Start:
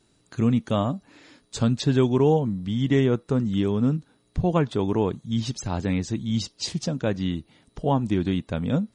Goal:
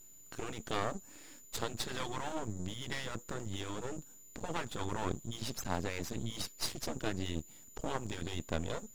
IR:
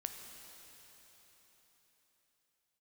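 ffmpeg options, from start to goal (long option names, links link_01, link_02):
-af "aeval=exprs='val(0)+0.00398*sin(2*PI*7000*n/s)':channel_layout=same,afftfilt=real='re*lt(hypot(re,im),0.316)':imag='im*lt(hypot(re,im),0.316)':win_size=1024:overlap=0.75,aeval=exprs='max(val(0),0)':channel_layout=same,volume=-2dB"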